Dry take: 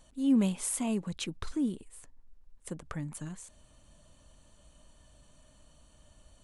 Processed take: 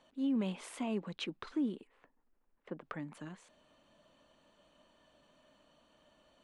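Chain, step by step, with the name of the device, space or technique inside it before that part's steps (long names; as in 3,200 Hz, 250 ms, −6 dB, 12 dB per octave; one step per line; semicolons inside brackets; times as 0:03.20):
DJ mixer with the lows and highs turned down (three-way crossover with the lows and the highs turned down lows −23 dB, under 200 Hz, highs −22 dB, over 4,200 Hz; brickwall limiter −27 dBFS, peak gain reduction 7 dB)
0:01.87–0:02.81: low-pass filter 2,300 Hz 12 dB per octave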